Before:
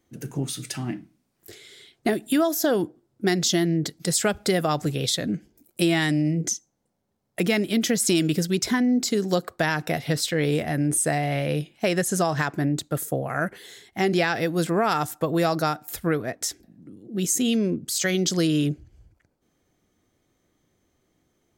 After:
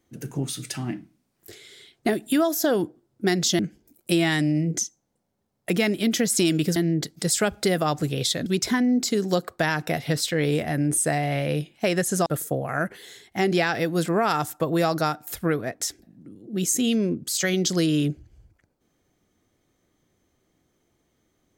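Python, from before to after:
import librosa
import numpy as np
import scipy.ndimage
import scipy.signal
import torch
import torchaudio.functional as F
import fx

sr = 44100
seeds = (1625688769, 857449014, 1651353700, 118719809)

y = fx.edit(x, sr, fx.move(start_s=3.59, length_s=1.7, to_s=8.46),
    fx.cut(start_s=12.26, length_s=0.61), tone=tone)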